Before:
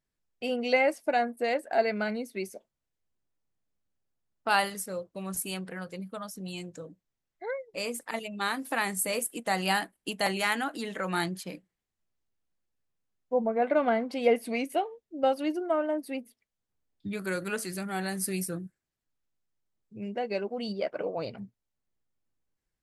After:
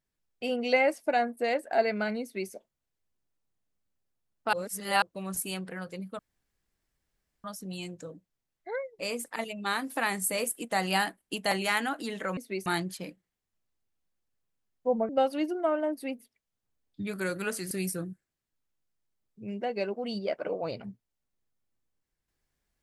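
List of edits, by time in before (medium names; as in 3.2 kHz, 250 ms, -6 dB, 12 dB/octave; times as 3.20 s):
2.22–2.51 s: copy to 11.12 s
4.53–5.02 s: reverse
6.19 s: insert room tone 1.25 s
13.55–15.15 s: delete
17.77–18.25 s: delete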